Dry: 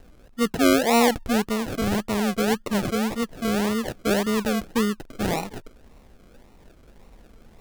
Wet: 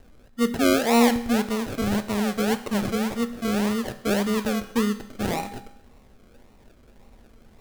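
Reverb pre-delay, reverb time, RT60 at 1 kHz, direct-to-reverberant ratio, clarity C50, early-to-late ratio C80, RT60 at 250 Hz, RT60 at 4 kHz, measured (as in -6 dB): 4 ms, 0.80 s, 0.80 s, 9.0 dB, 13.0 dB, 15.5 dB, 0.80 s, 0.80 s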